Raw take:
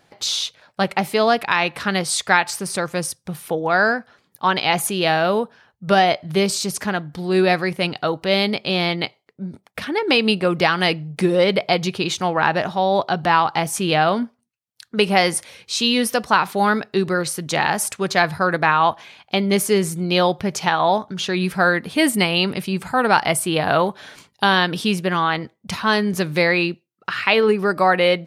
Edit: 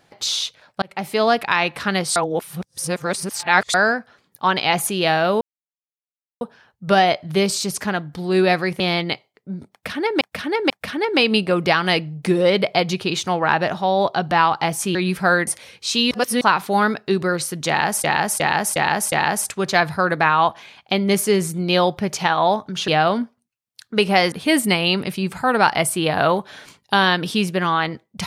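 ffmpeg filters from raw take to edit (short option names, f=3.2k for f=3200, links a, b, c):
-filter_complex "[0:a]asplit=18[a][b][c][d][e][f][g][h][i][j][k][l][m][n][o][p][q][r];[a]atrim=end=0.82,asetpts=PTS-STARTPTS,afade=t=out:st=0.816:d=0.004:c=hsin[s];[b]atrim=start=0.82:end=2.162,asetpts=PTS-STARTPTS,afade=t=in:d=0.54:c=qsin[t];[c]atrim=start=2.158:end=3.742,asetpts=PTS-STARTPTS,areverse[u];[d]atrim=start=3.738:end=5.41,asetpts=PTS-STARTPTS,afade=t=out:st=1.668:d=0.004:c=hsin,apad=pad_dur=1[v];[e]atrim=start=5.41:end=7.802,asetpts=PTS-STARTPTS,afade=t=in:d=0.004:c=hsin[w];[f]atrim=start=8.718:end=10.132[x];[g]atrim=start=9.638:end=10.132[y];[h]atrim=start=9.638:end=13.892[z];[i]atrim=start=21.298:end=21.822[aa];[j]atrim=start=15.328:end=15.972[ab];[k]atrim=start=15.968:end=16.272,asetpts=PTS-STARTPTS,areverse[ac];[l]atrim=start=16.268:end=17.902[ad];[m]atrim=start=17.538:end=17.902[ae];[n]atrim=start=17.538:end=17.902[af];[o]atrim=start=17.538:end=17.902[ag];[p]atrim=start=17.538:end=21.302[ah];[q]atrim=start=13.888:end=15.332[ai];[r]atrim=start=21.818[aj];[s][t]concat=n=2:v=0:a=1[ak];[ak][u]acrossfade=d=0.004:c1=hsin:c2=hsin[al];[v][w]concat=n=2:v=0:a=1[am];[al][am]acrossfade=d=0.004:c1=hsin:c2=hsin[an];[an][x]acrossfade=d=0.004:c1=hsin:c2=hsin[ao];[ao][y]acrossfade=d=0.004:c1=hsin:c2=hsin[ap];[ap][z]acrossfade=d=0.004:c1=hsin:c2=hsin[aq];[aq][aa]acrossfade=d=0.004:c1=hsin:c2=hsin[ar];[ar][ab]acrossfade=d=0.004:c1=hsin:c2=hsin[as];[as][ac]acrossfade=d=0.004:c1=hsin:c2=hsin[at];[at][ad]acrossfade=d=0.004:c1=hsin:c2=hsin[au];[au][ae]acrossfade=d=0.004:c1=hsin:c2=hsin[av];[av][af]acrossfade=d=0.004:c1=hsin:c2=hsin[aw];[aw][ag]acrossfade=d=0.004:c1=hsin:c2=hsin[ax];[ax][ah]acrossfade=d=0.004:c1=hsin:c2=hsin[ay];[ay][ai]acrossfade=d=0.004:c1=hsin:c2=hsin[az];[az][aj]acrossfade=d=0.004:c1=hsin:c2=hsin"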